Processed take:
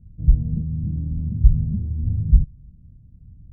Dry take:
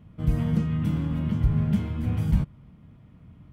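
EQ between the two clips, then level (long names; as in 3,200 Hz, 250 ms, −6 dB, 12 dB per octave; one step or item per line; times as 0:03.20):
moving average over 40 samples
spectral tilt −4.5 dB per octave
low-shelf EQ 110 Hz +11 dB
−17.0 dB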